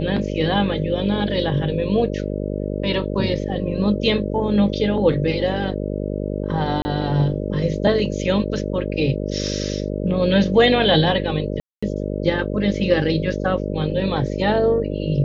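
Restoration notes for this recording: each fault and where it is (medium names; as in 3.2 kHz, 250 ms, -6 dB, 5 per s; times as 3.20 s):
buzz 50 Hz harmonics 12 -25 dBFS
6.82–6.85 s: dropout 30 ms
11.60–11.82 s: dropout 225 ms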